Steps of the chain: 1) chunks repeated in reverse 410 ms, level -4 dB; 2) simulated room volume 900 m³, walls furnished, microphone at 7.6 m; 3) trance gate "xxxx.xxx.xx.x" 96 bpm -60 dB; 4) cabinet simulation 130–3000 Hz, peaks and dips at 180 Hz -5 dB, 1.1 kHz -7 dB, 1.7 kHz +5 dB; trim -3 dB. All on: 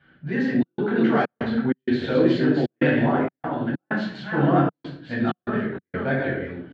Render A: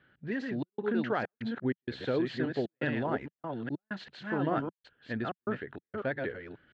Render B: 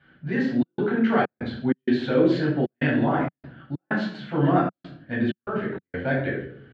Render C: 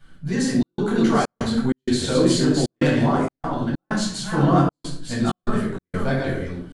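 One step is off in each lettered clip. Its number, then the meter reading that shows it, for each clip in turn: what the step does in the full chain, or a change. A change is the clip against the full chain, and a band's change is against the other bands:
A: 2, 125 Hz band -2.5 dB; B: 1, momentary loudness spread change +1 LU; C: 4, 4 kHz band +8.0 dB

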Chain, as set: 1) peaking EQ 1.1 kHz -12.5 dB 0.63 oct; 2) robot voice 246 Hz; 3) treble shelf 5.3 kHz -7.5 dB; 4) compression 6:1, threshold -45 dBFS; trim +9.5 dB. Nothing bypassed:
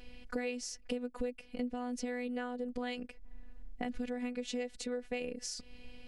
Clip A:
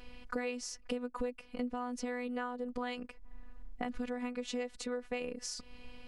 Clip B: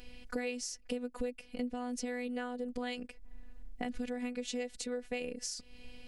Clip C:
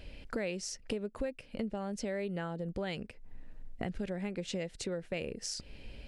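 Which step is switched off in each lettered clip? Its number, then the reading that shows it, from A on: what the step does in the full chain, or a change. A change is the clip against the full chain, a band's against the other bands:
1, 1 kHz band +3.5 dB; 3, 8 kHz band +2.5 dB; 2, 125 Hz band +15.0 dB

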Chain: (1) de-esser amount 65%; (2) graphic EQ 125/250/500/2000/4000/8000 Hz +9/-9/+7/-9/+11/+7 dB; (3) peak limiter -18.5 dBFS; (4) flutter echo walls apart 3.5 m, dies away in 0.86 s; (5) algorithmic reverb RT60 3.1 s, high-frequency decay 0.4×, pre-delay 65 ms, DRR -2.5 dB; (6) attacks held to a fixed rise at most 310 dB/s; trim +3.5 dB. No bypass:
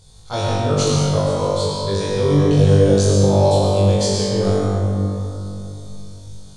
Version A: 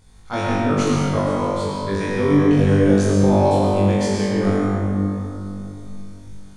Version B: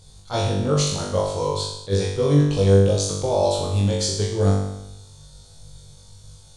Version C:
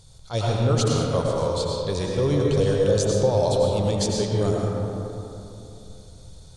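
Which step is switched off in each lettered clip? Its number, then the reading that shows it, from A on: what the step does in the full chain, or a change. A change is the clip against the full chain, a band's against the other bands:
2, loudness change -1.5 LU; 5, momentary loudness spread change -6 LU; 4, momentary loudness spread change -2 LU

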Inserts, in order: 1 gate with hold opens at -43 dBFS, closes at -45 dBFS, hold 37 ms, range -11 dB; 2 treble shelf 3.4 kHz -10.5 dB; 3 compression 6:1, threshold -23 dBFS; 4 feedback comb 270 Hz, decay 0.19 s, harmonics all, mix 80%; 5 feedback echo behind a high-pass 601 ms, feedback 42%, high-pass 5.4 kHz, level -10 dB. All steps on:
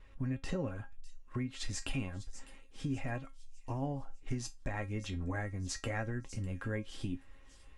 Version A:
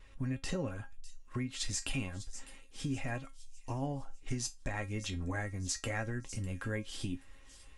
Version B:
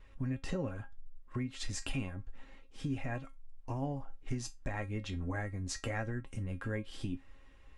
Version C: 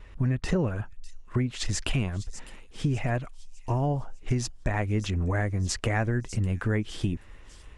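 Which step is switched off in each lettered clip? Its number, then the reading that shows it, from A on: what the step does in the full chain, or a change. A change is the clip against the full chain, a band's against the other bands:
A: 2, 8 kHz band +6.0 dB; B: 5, echo-to-direct -27.5 dB to none; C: 4, 125 Hz band +3.0 dB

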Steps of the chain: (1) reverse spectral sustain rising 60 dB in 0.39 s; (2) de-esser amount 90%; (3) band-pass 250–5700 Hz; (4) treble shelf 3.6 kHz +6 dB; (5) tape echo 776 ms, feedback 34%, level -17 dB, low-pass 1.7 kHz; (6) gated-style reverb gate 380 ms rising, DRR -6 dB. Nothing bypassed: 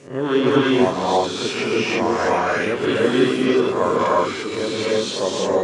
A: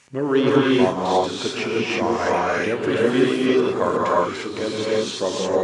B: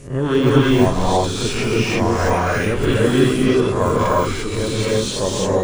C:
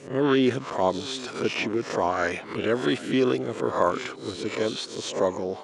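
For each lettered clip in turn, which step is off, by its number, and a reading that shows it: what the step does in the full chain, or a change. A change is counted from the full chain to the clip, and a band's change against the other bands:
1, momentary loudness spread change +1 LU; 3, 125 Hz band +11.5 dB; 6, momentary loudness spread change +3 LU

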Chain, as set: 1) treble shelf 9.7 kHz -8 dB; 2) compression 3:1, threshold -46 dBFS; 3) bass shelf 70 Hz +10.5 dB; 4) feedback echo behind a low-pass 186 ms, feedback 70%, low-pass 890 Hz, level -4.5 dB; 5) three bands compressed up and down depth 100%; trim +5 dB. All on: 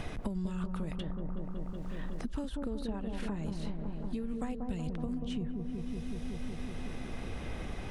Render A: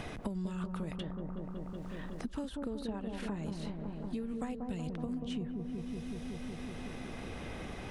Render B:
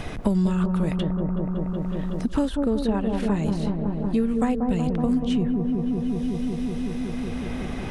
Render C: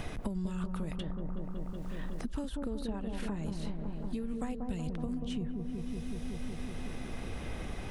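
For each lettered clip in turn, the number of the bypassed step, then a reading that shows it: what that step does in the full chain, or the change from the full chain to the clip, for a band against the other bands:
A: 3, 125 Hz band -2.0 dB; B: 2, mean gain reduction 6.5 dB; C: 1, 8 kHz band +3.0 dB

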